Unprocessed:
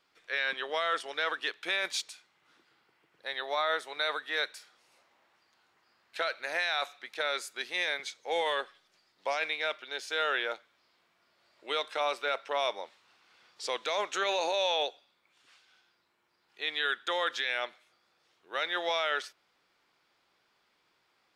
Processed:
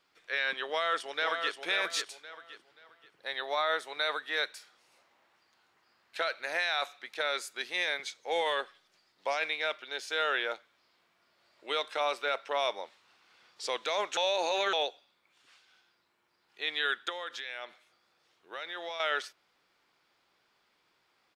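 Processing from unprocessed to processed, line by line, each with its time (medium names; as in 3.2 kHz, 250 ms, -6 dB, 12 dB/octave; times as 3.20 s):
0.68–1.55 s: echo throw 530 ms, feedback 30%, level -6 dB
14.17–14.73 s: reverse
17.09–19.00 s: compression 2.5:1, threshold -39 dBFS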